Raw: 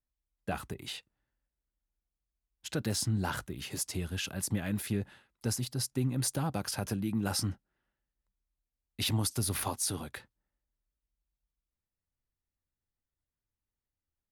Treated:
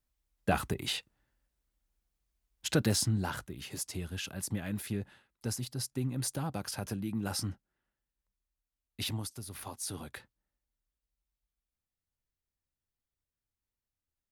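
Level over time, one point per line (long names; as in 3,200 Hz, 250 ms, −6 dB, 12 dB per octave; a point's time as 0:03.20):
0:02.74 +6.5 dB
0:03.35 −3 dB
0:09.01 −3 dB
0:09.45 −13 dB
0:10.09 −2 dB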